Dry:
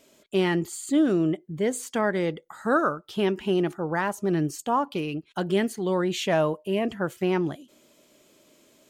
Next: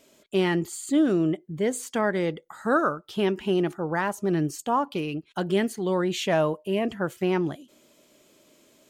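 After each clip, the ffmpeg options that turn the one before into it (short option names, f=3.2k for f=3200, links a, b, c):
-af anull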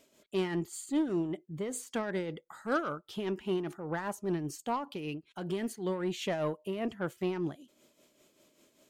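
-af "aeval=exprs='0.237*(cos(1*acos(clip(val(0)/0.237,-1,1)))-cos(1*PI/2))+0.0188*(cos(5*acos(clip(val(0)/0.237,-1,1)))-cos(5*PI/2))':c=same,tremolo=f=5.1:d=0.56,volume=-7.5dB"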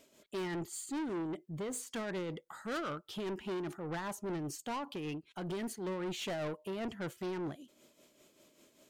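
-af "asoftclip=type=tanh:threshold=-35.5dB,volume=1dB"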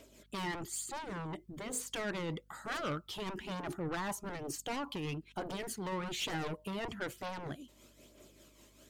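-af "aeval=exprs='val(0)+0.000224*(sin(2*PI*50*n/s)+sin(2*PI*2*50*n/s)/2+sin(2*PI*3*50*n/s)/3+sin(2*PI*4*50*n/s)/4+sin(2*PI*5*50*n/s)/5)':c=same,aphaser=in_gain=1:out_gain=1:delay=1.1:decay=0.4:speed=1.1:type=triangular,afftfilt=real='re*lt(hypot(re,im),0.1)':imag='im*lt(hypot(re,im),0.1)':win_size=1024:overlap=0.75,volume=3dB"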